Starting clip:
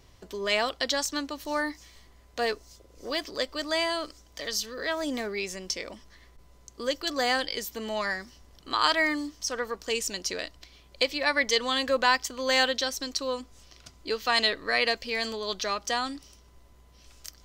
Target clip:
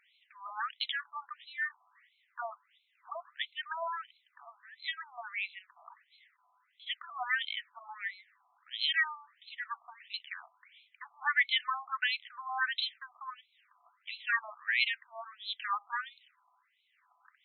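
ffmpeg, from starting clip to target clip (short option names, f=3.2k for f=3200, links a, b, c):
-af "highpass=660,lowpass=7.9k,afftfilt=real='re*between(b*sr/1024,910*pow(3000/910,0.5+0.5*sin(2*PI*1.5*pts/sr))/1.41,910*pow(3000/910,0.5+0.5*sin(2*PI*1.5*pts/sr))*1.41)':imag='im*between(b*sr/1024,910*pow(3000/910,0.5+0.5*sin(2*PI*1.5*pts/sr))/1.41,910*pow(3000/910,0.5+0.5*sin(2*PI*1.5*pts/sr))*1.41)':win_size=1024:overlap=0.75"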